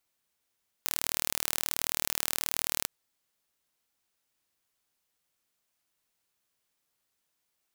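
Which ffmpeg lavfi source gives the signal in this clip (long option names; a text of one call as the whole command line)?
ffmpeg -f lavfi -i "aevalsrc='0.794*eq(mod(n,1140),0)':duration=2:sample_rate=44100" out.wav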